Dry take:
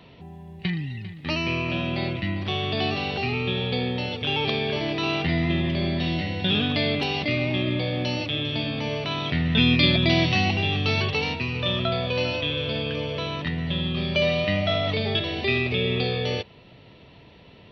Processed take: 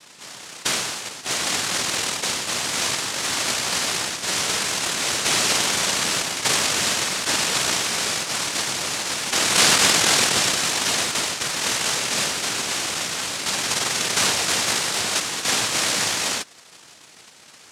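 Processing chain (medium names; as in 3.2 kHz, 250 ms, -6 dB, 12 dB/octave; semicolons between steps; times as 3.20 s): in parallel at -6 dB: sample-and-hold 35×; on the sum: noise-vocoded speech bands 1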